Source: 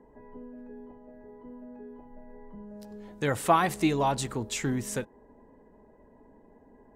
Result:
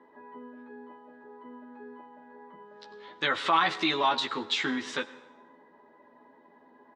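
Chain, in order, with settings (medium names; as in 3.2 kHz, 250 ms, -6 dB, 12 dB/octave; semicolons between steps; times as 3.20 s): treble shelf 2.5 kHz +9.5 dB; doubling 12 ms -3 dB; peak limiter -16 dBFS, peak gain reduction 11 dB; cabinet simulation 400–3900 Hz, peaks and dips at 460 Hz -9 dB, 690 Hz -7 dB, 1.2 kHz +4 dB, 2.5 kHz -3 dB, 3.7 kHz +5 dB; plate-style reverb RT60 1.1 s, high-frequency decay 0.75×, pre-delay 80 ms, DRR 17 dB; trim +3.5 dB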